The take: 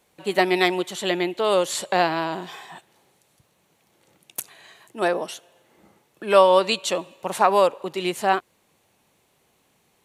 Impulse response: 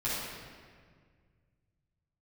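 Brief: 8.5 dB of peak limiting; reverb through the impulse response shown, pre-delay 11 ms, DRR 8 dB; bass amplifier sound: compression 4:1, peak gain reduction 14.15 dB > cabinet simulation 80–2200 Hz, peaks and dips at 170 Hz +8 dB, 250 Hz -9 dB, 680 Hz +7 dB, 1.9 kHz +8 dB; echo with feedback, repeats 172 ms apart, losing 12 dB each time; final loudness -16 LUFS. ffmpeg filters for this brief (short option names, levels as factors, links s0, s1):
-filter_complex "[0:a]alimiter=limit=0.282:level=0:latency=1,aecho=1:1:172|344|516:0.251|0.0628|0.0157,asplit=2[s0][s1];[1:a]atrim=start_sample=2205,adelay=11[s2];[s1][s2]afir=irnorm=-1:irlink=0,volume=0.168[s3];[s0][s3]amix=inputs=2:normalize=0,acompressor=threshold=0.0251:ratio=4,highpass=f=80:w=0.5412,highpass=f=80:w=1.3066,equalizer=f=170:t=q:w=4:g=8,equalizer=f=250:t=q:w=4:g=-9,equalizer=f=680:t=q:w=4:g=7,equalizer=f=1900:t=q:w=4:g=8,lowpass=f=2200:w=0.5412,lowpass=f=2200:w=1.3066,volume=7.5"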